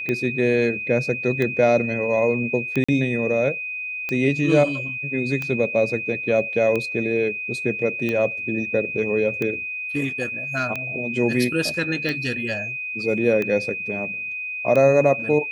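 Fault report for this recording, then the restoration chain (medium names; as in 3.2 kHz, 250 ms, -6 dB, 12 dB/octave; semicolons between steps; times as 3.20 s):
tick 45 rpm -13 dBFS
whine 2.5 kHz -27 dBFS
2.84–2.88 s: dropout 45 ms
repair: de-click; band-stop 2.5 kHz, Q 30; interpolate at 2.84 s, 45 ms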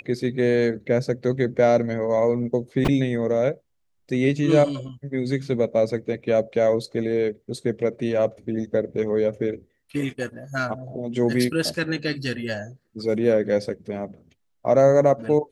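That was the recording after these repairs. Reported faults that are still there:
nothing left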